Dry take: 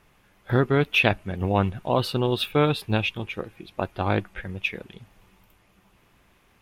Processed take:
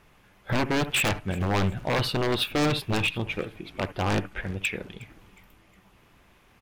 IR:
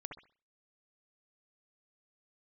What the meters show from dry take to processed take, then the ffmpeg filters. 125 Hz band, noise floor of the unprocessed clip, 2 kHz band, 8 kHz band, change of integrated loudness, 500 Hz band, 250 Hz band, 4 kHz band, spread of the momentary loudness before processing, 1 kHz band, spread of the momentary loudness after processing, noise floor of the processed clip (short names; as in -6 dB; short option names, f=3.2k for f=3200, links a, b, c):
-3.0 dB, -61 dBFS, -1.5 dB, +11.0 dB, -2.5 dB, -4.5 dB, -2.0 dB, +0.5 dB, 13 LU, -2.5 dB, 10 LU, -59 dBFS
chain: -filter_complex "[0:a]aeval=exprs='0.1*(abs(mod(val(0)/0.1+3,4)-2)-1)':c=same,asplit=4[a][b][c][d];[b]adelay=362,afreqshift=-140,volume=-21.5dB[e];[c]adelay=724,afreqshift=-280,volume=-29.9dB[f];[d]adelay=1086,afreqshift=-420,volume=-38.3dB[g];[a][e][f][g]amix=inputs=4:normalize=0,asplit=2[h][i];[1:a]atrim=start_sample=2205,atrim=end_sample=3528,lowpass=8.3k[j];[i][j]afir=irnorm=-1:irlink=0,volume=-6dB[k];[h][k]amix=inputs=2:normalize=0"